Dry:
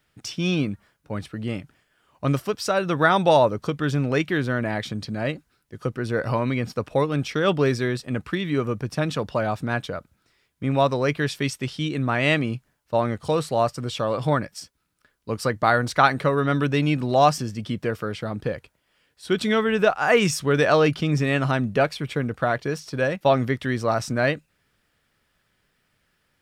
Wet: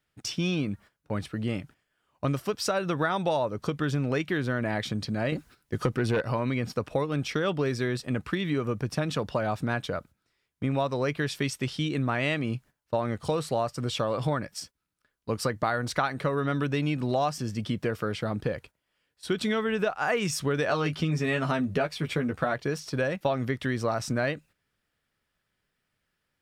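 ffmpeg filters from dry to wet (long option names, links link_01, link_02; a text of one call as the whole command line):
ffmpeg -i in.wav -filter_complex "[0:a]asettb=1/sr,asplit=3[link_01][link_02][link_03];[link_01]atrim=end=5.324[link_04];[link_02]atrim=start=5.32:end=6.21,asetpts=PTS-STARTPTS,afade=type=in:duration=0.004:curve=qsin,afade=type=out:start_time=0.886:duration=0.004:curve=qsin,aeval=exprs='0.282*sin(PI/2*2*val(0)/0.282)':channel_layout=same[link_05];[link_03]atrim=start=6.206[link_06];[link_04][link_05]acrossfade=duration=0.004:curve1=hsin:curve2=qsin[link_07];[link_07][link_06]acrossfade=duration=0.004:curve1=qsin:curve2=hsin,asettb=1/sr,asplit=3[link_08][link_09][link_10];[link_08]atrim=end=20.684[link_11];[link_09]atrim=start=20.68:end=22.54,asetpts=PTS-STARTPTS,afade=type=in:duration=0.004:curve=qsin,afade=type=out:start_time=1.856:duration=0.004:curve=qsin,asplit=2[link_12][link_13];[link_13]adelay=12,volume=-4dB[link_14];[link_12][link_14]amix=inputs=2:normalize=0,atrim=end_sample=82026[link_15];[link_10]atrim=start=22.536[link_16];[link_11][link_15]acrossfade=duration=0.004:curve1=hsin:curve2=qsin[link_17];[link_17][link_16]acrossfade=duration=0.004:curve1=qsin:curve2=hsin,agate=range=-10dB:threshold=-46dB:ratio=16:detection=peak,acompressor=threshold=-24dB:ratio=5" out.wav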